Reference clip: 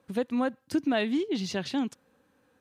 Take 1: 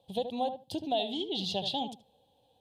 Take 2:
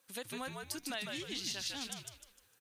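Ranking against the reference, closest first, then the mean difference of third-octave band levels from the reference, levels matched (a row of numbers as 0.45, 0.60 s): 1, 2; 6.5, 13.0 dB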